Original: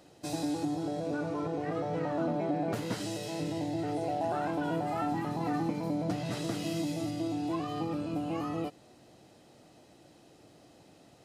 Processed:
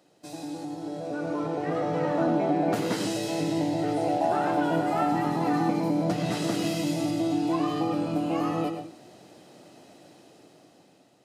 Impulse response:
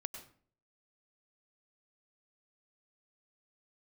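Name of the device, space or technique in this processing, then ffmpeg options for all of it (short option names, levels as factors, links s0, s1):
far laptop microphone: -filter_complex "[1:a]atrim=start_sample=2205[s0];[0:a][s0]afir=irnorm=-1:irlink=0,highpass=150,dynaudnorm=f=370:g=7:m=3.55,volume=0.794"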